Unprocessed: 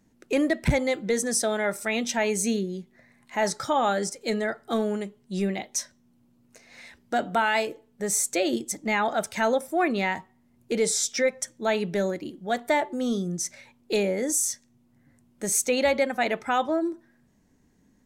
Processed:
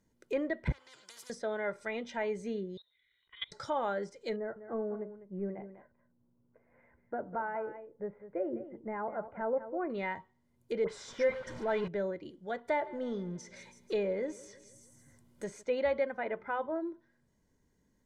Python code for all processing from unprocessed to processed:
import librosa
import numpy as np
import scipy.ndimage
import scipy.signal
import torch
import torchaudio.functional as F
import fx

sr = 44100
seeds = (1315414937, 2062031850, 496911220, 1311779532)

y = fx.chain(x, sr, fx.bandpass_q(hz=4400.0, q=1.7),
    fx.spectral_comp(ratio=10.0), at=(0.72, 1.3))
y = fx.chain(y, sr, fx.bessel_highpass(hz=190.0, order=2),
    fx.level_steps(step_db=22),
    fx.freq_invert(carrier_hz=4000), at=(2.77, 3.52))
y = fx.chain(y, sr, fx.gaussian_blur(sigma=6.1),
    fx.echo_single(ms=200, db=-12.0), at=(4.36, 9.9))
y = fx.chain(y, sr, fx.zero_step(step_db=-27.5),
    fx.dispersion(late='highs', ms=53.0, hz=1800.0), at=(10.84, 11.88))
y = fx.chain(y, sr, fx.law_mismatch(coded='mu'),
    fx.echo_feedback(ms=162, feedback_pct=53, wet_db=-20), at=(12.68, 15.63))
y = fx.chain(y, sr, fx.lowpass(hz=2200.0, slope=12),
    fx.hum_notches(base_hz=50, count=8), at=(16.2, 16.76))
y = fx.env_lowpass_down(y, sr, base_hz=2200.0, full_db=-24.0)
y = fx.notch(y, sr, hz=2600.0, q=12.0)
y = y + 0.39 * np.pad(y, (int(2.0 * sr / 1000.0), 0))[:len(y)]
y = y * 10.0 ** (-9.0 / 20.0)